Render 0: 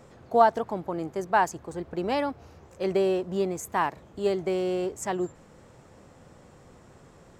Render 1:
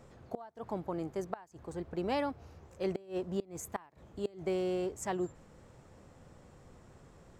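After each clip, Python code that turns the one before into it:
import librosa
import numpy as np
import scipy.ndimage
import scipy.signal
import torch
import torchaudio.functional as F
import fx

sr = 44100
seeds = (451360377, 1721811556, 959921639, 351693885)

y = fx.low_shelf(x, sr, hz=88.0, db=8.0)
y = fx.gate_flip(y, sr, shuts_db=-16.0, range_db=-25)
y = F.gain(torch.from_numpy(y), -6.0).numpy()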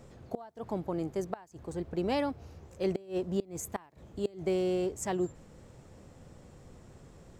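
y = fx.peak_eq(x, sr, hz=1200.0, db=-5.0, octaves=1.9)
y = F.gain(torch.from_numpy(y), 4.5).numpy()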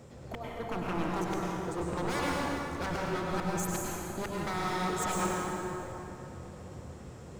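y = scipy.signal.sosfilt(scipy.signal.butter(4, 59.0, 'highpass', fs=sr, output='sos'), x)
y = 10.0 ** (-32.5 / 20.0) * (np.abs((y / 10.0 ** (-32.5 / 20.0) + 3.0) % 4.0 - 2.0) - 1.0)
y = fx.rev_plate(y, sr, seeds[0], rt60_s=3.3, hf_ratio=0.6, predelay_ms=85, drr_db=-4.0)
y = F.gain(torch.from_numpy(y), 2.0).numpy()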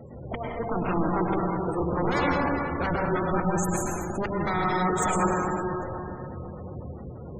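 y = fx.spec_gate(x, sr, threshold_db=-20, keep='strong')
y = F.gain(torch.from_numpy(y), 7.5).numpy()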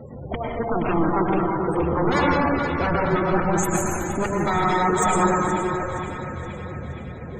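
y = fx.spec_quant(x, sr, step_db=15)
y = fx.hum_notches(y, sr, base_hz=60, count=3)
y = fx.echo_banded(y, sr, ms=471, feedback_pct=73, hz=2600.0, wet_db=-7)
y = F.gain(torch.from_numpy(y), 5.5).numpy()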